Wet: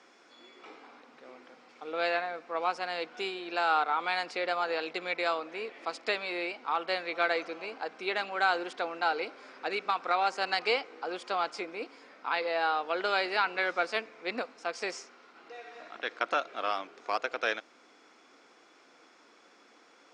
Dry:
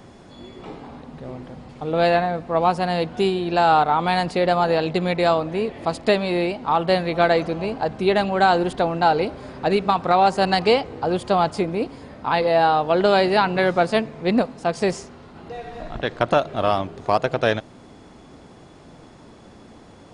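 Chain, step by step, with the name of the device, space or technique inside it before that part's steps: phone speaker on a table (cabinet simulation 350–8000 Hz, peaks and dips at 390 Hz -6 dB, 610 Hz -7 dB, 870 Hz -4 dB, 1.4 kHz +6 dB, 2.3 kHz +7 dB, 5.5 kHz +6 dB); trim -9 dB

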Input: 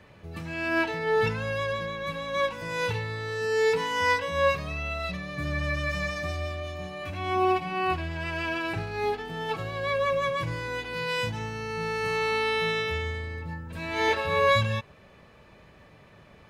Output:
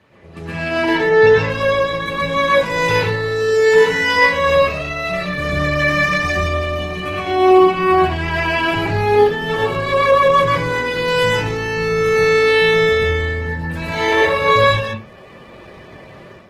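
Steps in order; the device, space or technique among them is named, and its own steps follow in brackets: 0.97–1.50 s: steep low-pass 7 kHz 96 dB/octave; far-field microphone of a smart speaker (reverberation RT60 0.30 s, pre-delay 116 ms, DRR -4.5 dB; high-pass 84 Hz 12 dB/octave; level rider gain up to 9 dB; Opus 16 kbps 48 kHz)

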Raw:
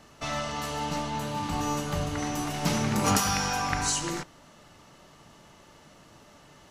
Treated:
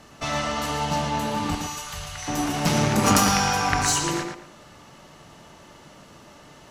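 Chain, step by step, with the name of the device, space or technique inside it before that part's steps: 1.55–2.28 s: amplifier tone stack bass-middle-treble 10-0-10; rockabilly slapback (valve stage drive 13 dB, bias 0.65; tape echo 113 ms, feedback 28%, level -3.5 dB, low-pass 3.7 kHz); trim +8 dB

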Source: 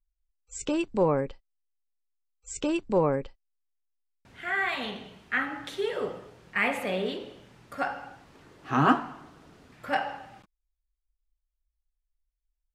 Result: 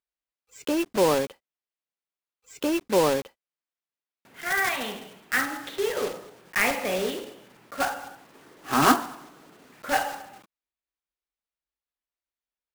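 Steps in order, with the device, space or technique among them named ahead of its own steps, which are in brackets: early digital voice recorder (band-pass 220–3700 Hz; block-companded coder 3-bit); trim +3 dB

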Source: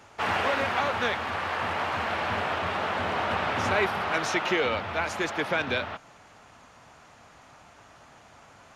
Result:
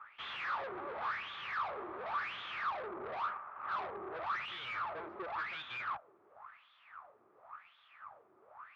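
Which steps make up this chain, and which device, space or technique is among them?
2.70–4.23 s: steep low-pass 1.3 kHz 36 dB/octave; wah-wah guitar rig (wah-wah 0.93 Hz 350–3500 Hz, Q 8.9; valve stage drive 48 dB, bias 0.55; cabinet simulation 100–3500 Hz, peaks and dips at 170 Hz -7 dB, 270 Hz -10 dB, 480 Hz -5 dB, 700 Hz -3 dB, 1.2 kHz +9 dB, 2.9 kHz -5 dB); trim +10 dB

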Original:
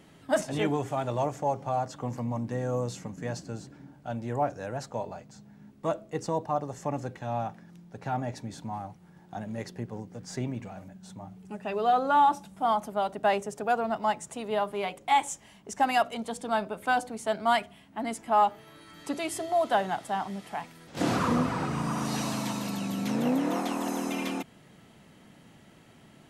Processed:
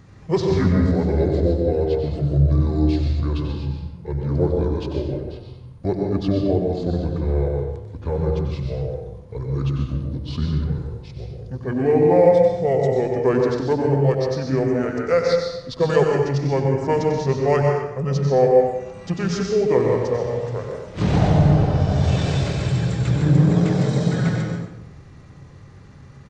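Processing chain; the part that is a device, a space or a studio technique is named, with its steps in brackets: monster voice (pitch shift -8.5 st; bass shelf 170 Hz +9 dB; delay 94 ms -9 dB; reverberation RT60 0.85 s, pre-delay 119 ms, DRR 2 dB); trim +4 dB

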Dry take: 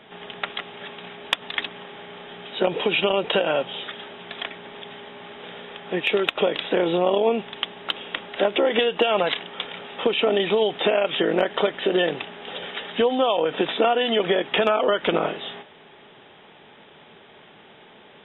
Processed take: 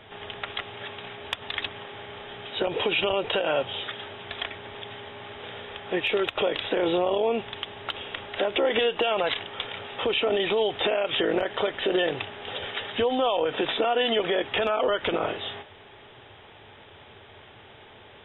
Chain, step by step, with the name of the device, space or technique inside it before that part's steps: car stereo with a boomy subwoofer (resonant low shelf 130 Hz +9 dB, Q 3; peak limiter -15 dBFS, peak gain reduction 8.5 dB)

